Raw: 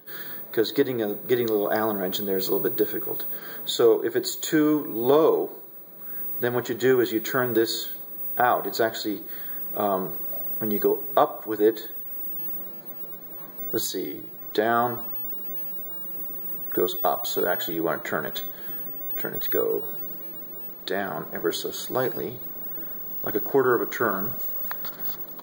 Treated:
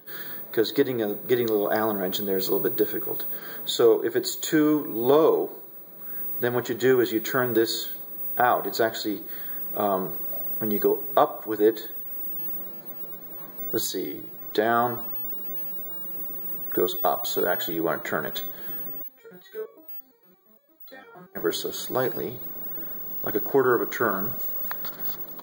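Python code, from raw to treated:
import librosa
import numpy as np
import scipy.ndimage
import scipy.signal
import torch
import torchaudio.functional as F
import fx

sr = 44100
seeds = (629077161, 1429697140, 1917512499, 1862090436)

y = fx.resonator_held(x, sr, hz=8.7, low_hz=180.0, high_hz=680.0, at=(19.02, 21.35), fade=0.02)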